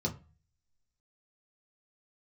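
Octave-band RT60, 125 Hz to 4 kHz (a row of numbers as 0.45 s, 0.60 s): 0.60 s, 0.40 s, 0.30 s, 0.35 s, 0.30 s, 0.25 s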